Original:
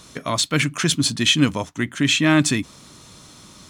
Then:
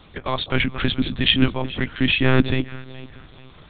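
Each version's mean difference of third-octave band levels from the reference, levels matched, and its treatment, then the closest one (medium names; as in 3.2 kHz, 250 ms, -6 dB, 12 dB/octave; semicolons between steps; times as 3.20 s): 9.5 dB: echo whose repeats swap between lows and highs 215 ms, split 950 Hz, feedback 58%, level -12 dB; monotone LPC vocoder at 8 kHz 130 Hz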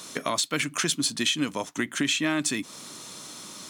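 6.0 dB: high-pass 230 Hz 12 dB/octave; treble shelf 7 kHz +6.5 dB; compression 4:1, threshold -27 dBFS, peak gain reduction 13.5 dB; trim +2.5 dB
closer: second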